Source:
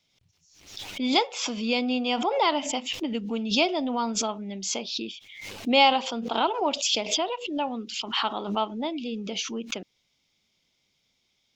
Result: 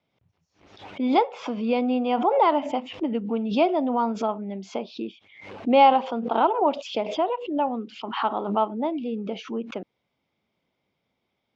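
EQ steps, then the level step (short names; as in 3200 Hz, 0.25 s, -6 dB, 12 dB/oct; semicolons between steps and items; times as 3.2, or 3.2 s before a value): HPF 51 Hz; LPF 1000 Hz 12 dB/oct; tilt +2 dB/oct; +7.0 dB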